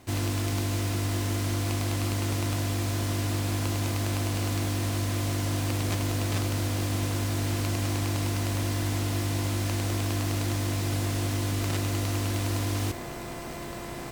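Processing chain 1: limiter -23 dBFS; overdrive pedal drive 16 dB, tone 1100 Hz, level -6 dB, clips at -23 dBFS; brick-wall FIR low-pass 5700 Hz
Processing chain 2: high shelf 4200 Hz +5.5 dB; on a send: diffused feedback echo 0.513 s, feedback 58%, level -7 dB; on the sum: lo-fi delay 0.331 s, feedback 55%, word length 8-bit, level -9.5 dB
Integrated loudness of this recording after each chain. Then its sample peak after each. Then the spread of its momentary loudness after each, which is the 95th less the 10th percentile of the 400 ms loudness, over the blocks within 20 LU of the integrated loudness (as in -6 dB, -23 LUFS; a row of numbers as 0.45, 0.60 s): -34.0, -22.5 LUFS; -24.0, -8.0 dBFS; 1, 3 LU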